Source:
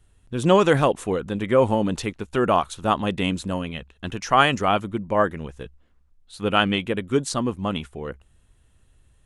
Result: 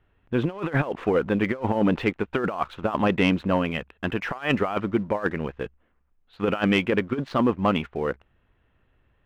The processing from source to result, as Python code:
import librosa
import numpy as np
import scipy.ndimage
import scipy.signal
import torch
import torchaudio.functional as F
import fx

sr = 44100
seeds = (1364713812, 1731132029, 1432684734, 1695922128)

y = scipy.signal.sosfilt(scipy.signal.butter(4, 2600.0, 'lowpass', fs=sr, output='sos'), x)
y = fx.low_shelf(y, sr, hz=150.0, db=-11.5)
y = fx.over_compress(y, sr, threshold_db=-25.0, ratio=-0.5)
y = fx.leveller(y, sr, passes=1)